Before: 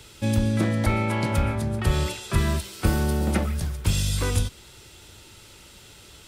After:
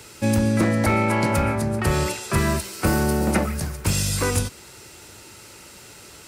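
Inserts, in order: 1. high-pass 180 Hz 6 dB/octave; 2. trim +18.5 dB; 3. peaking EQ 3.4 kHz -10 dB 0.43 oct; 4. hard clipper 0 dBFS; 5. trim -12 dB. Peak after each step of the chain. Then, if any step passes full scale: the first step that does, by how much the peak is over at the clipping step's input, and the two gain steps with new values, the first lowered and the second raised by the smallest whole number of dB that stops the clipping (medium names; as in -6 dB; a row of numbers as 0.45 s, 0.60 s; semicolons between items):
-12.0 dBFS, +6.5 dBFS, +6.5 dBFS, 0.0 dBFS, -12.0 dBFS; step 2, 6.5 dB; step 2 +11.5 dB, step 5 -5 dB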